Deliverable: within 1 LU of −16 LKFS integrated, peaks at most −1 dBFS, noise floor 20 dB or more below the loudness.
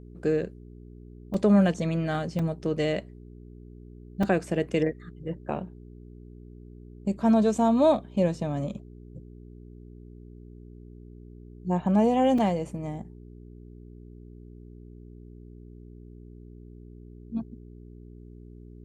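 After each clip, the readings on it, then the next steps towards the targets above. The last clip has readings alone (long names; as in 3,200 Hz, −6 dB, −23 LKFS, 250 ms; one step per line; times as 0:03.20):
number of dropouts 4; longest dropout 3.8 ms; mains hum 60 Hz; hum harmonics up to 420 Hz; level of the hum −45 dBFS; integrated loudness −26.5 LKFS; sample peak −10.0 dBFS; target loudness −16.0 LKFS
→ repair the gap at 0:01.34/0:02.39/0:04.23/0:12.38, 3.8 ms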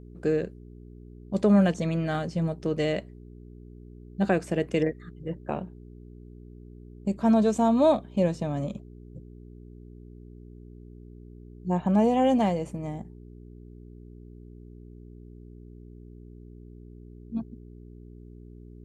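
number of dropouts 0; mains hum 60 Hz; hum harmonics up to 420 Hz; level of the hum −45 dBFS
→ hum removal 60 Hz, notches 7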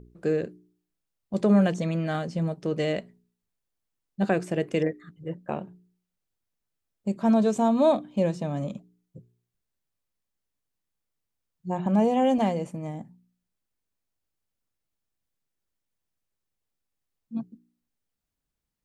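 mains hum none found; integrated loudness −26.0 LKFS; sample peak −10.0 dBFS; target loudness −16.0 LKFS
→ level +10 dB
brickwall limiter −1 dBFS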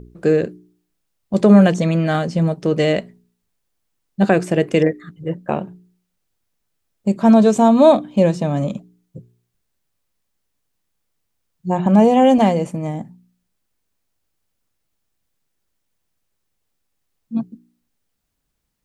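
integrated loudness −16.5 LKFS; sample peak −1.0 dBFS; background noise floor −74 dBFS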